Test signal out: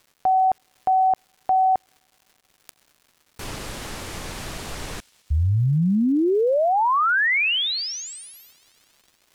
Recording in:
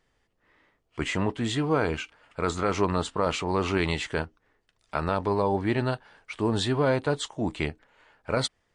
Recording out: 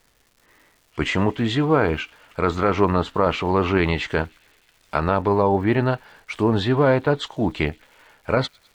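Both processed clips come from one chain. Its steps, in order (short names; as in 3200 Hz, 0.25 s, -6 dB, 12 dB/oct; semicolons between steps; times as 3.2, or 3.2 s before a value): treble ducked by the level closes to 2800 Hz, closed at -23 dBFS; thin delay 0.104 s, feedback 77%, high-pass 2900 Hz, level -24 dB; crackle 380/s -52 dBFS; gain +6.5 dB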